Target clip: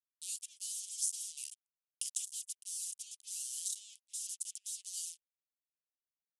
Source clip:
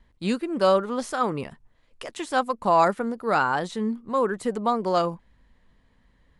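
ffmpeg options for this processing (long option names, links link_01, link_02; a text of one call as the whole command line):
ffmpeg -i in.wav -af "areverse,acompressor=threshold=-33dB:ratio=6,areverse,acrusher=bits=6:mix=0:aa=0.5,asuperpass=centerf=6000:order=12:qfactor=0.77,aexciter=amount=6.9:drive=5:freq=5800,volume=-1dB" out.wav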